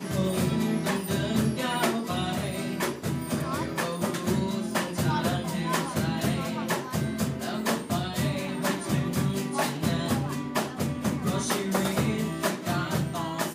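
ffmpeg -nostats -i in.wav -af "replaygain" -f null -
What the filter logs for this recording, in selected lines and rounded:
track_gain = +10.0 dB
track_peak = 0.171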